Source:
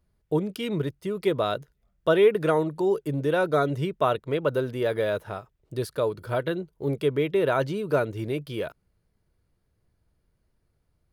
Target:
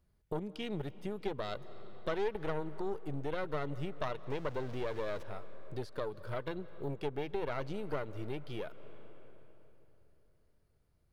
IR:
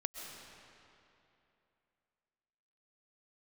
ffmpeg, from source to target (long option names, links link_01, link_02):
-filter_complex "[0:a]asettb=1/sr,asplit=3[link_01][link_02][link_03];[link_01]atrim=end=4.304[link_04];[link_02]atrim=start=4.3:end=5.23,asetpts=PTS-STARTPTS,afade=type=in:duration=0.004:curve=qsin,afade=type=out:start_time=0.926:duration=0.004:curve=qsin,aeval=exprs='val(0)+0.5*0.0237*sgn(val(0))':channel_layout=same[link_05];[link_03]atrim=start=5.226[link_06];[link_04][link_05]acrossfade=duration=0.004:curve1=hsin:curve2=qsin[link_07];[link_07][link_06]acrossfade=duration=0.004:curve1=qsin:curve2=hsin,acrossover=split=6500[link_08][link_09];[link_09]acompressor=threshold=-60dB:ratio=4:attack=1:release=60[link_10];[link_08][link_10]amix=inputs=2:normalize=0,aeval=exprs='0.335*(cos(1*acos(clip(val(0)/0.335,-1,1)))-cos(1*PI/2))+0.0841*(cos(4*acos(clip(val(0)/0.335,-1,1)))-cos(4*PI/2))':channel_layout=same,asplit=2[link_11][link_12];[1:a]atrim=start_sample=2205,asetrate=38367,aresample=44100[link_13];[link_12][link_13]afir=irnorm=-1:irlink=0,volume=-15.5dB[link_14];[link_11][link_14]amix=inputs=2:normalize=0,acompressor=threshold=-37dB:ratio=2,volume=-4dB"